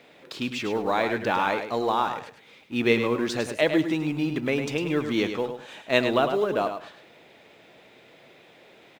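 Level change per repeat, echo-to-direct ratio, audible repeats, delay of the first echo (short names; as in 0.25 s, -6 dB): -14.0 dB, -8.0 dB, 2, 0.104 s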